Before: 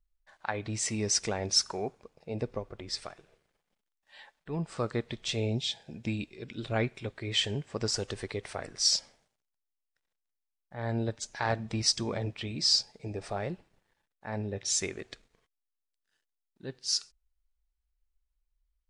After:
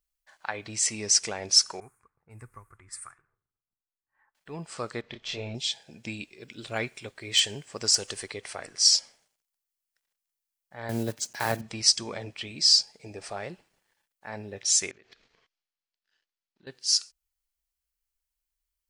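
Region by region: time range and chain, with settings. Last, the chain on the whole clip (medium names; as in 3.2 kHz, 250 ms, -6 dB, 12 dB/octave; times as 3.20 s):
1.80–4.35 s: level-controlled noise filter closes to 410 Hz, open at -34.5 dBFS + FFT filter 120 Hz 0 dB, 180 Hz -12 dB, 360 Hz -14 dB, 600 Hz -24 dB, 1.2 kHz +1 dB, 2.1 kHz -7 dB, 3.1 kHz -23 dB, 5.3 kHz -20 dB, 9 kHz +8 dB
5.01–5.55 s: partial rectifier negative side -3 dB + distance through air 160 m + doubling 29 ms -4 dB
6.34–8.29 s: treble shelf 6.4 kHz +9 dB + hard clipper -16 dBFS + tape noise reduction on one side only decoder only
10.89–11.62 s: block-companded coder 5-bit + high-pass 120 Hz + bass shelf 360 Hz +11.5 dB
14.91–16.67 s: low-pass 5.1 kHz 24 dB/octave + transient shaper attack +1 dB, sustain +6 dB + compression 5:1, threshold -53 dBFS
whole clip: tilt EQ +2.5 dB/octave; band-stop 3.7 kHz, Q 16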